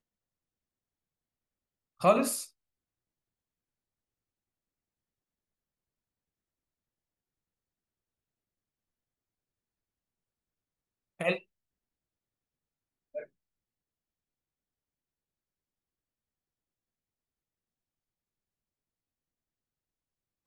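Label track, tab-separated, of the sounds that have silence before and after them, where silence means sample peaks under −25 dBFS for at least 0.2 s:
2.040000	2.350000	sound
11.210000	11.330000	sound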